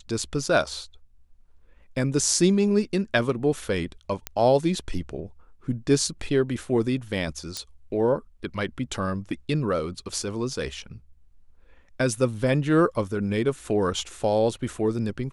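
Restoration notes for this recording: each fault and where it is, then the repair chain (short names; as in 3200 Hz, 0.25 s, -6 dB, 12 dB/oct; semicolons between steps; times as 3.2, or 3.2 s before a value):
4.27 pop -11 dBFS
7.57 pop -16 dBFS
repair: de-click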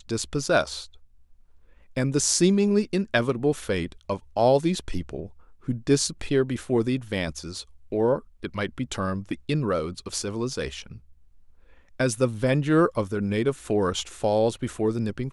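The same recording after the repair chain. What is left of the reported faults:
none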